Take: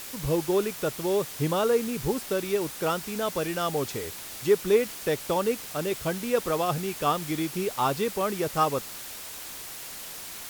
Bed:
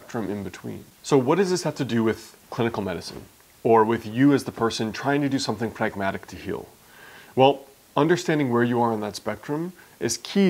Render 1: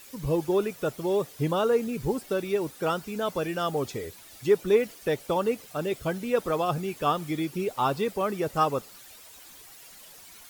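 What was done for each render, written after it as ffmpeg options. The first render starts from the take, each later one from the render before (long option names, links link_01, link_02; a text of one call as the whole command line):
ffmpeg -i in.wav -af "afftdn=noise_reduction=12:noise_floor=-40" out.wav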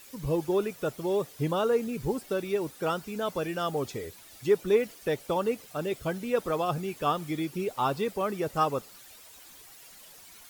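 ffmpeg -i in.wav -af "volume=-2dB" out.wav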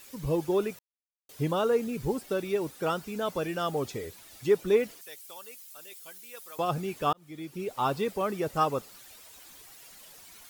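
ffmpeg -i in.wav -filter_complex "[0:a]asettb=1/sr,asplit=3[link_01][link_02][link_03];[link_01]atrim=end=5.014[link_04];[link_02]atrim=start=5.01:end=6.59,asetpts=PTS-STARTPTS,afade=type=in:duration=0.004:curve=qsin,afade=type=out:start_time=1.576:duration=0.004:curve=qsin,aderivative[link_05];[link_03]atrim=start=6.586[link_06];[link_04][link_05]acrossfade=duration=0.004:curve1=hsin:curve2=qsin[link_07];[link_07][link_06]acrossfade=duration=0.004:curve1=qsin:curve2=hsin,asplit=4[link_08][link_09][link_10][link_11];[link_08]atrim=end=0.79,asetpts=PTS-STARTPTS,afade=type=out:start_time=0.786:duration=0.004:curve=hsin[link_12];[link_09]atrim=start=0.79:end=1.29,asetpts=PTS-STARTPTS,volume=0[link_13];[link_10]atrim=start=1.29:end=7.13,asetpts=PTS-STARTPTS,afade=type=in:duration=0.004:curve=hsin,afade=type=out:start_time=5.836:duration=0.004:curve=hsin[link_14];[link_11]atrim=start=7.13,asetpts=PTS-STARTPTS,afade=type=in:duration=0.75[link_15];[link_12][link_13][link_14][link_15]concat=n=4:v=0:a=1" out.wav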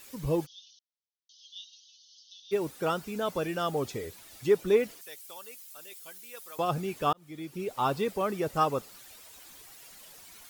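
ffmpeg -i in.wav -filter_complex "[0:a]asplit=3[link_01][link_02][link_03];[link_01]afade=type=out:start_time=0.45:duration=0.02[link_04];[link_02]asuperpass=centerf=4400:order=20:qfactor=1.3,afade=type=in:start_time=0.45:duration=0.02,afade=type=out:start_time=2.51:duration=0.02[link_05];[link_03]afade=type=in:start_time=2.51:duration=0.02[link_06];[link_04][link_05][link_06]amix=inputs=3:normalize=0" out.wav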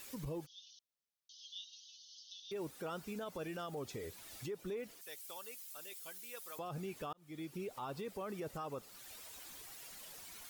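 ffmpeg -i in.wav -af "acompressor=threshold=-51dB:ratio=1.5,alimiter=level_in=10.5dB:limit=-24dB:level=0:latency=1:release=68,volume=-10.5dB" out.wav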